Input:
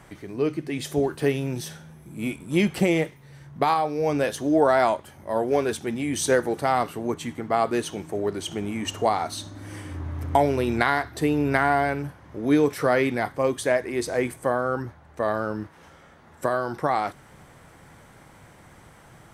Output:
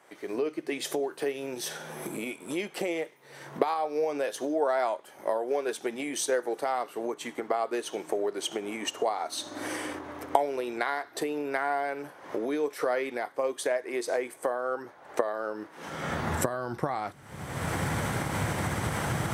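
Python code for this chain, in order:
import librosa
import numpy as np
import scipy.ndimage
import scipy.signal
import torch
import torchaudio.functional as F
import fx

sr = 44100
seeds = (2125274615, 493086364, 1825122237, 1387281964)

y = fx.recorder_agc(x, sr, target_db=-12.5, rise_db_per_s=42.0, max_gain_db=30)
y = fx.transient(y, sr, attack_db=2, sustain_db=-2)
y = fx.filter_sweep_highpass(y, sr, from_hz=440.0, to_hz=83.0, start_s=15.61, end_s=16.2, q=1.2)
y = y * 10.0 ** (-9.0 / 20.0)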